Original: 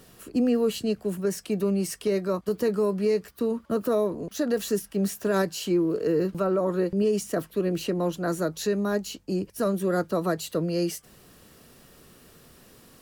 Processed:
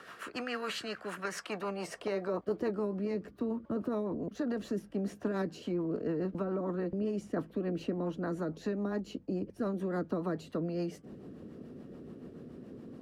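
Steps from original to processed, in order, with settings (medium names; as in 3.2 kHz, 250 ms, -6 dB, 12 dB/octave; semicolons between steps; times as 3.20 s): band-pass sweep 1.4 kHz -> 250 Hz, 1.25–2.94 s; rotary cabinet horn 7 Hz; spectrum-flattening compressor 2:1; trim -1.5 dB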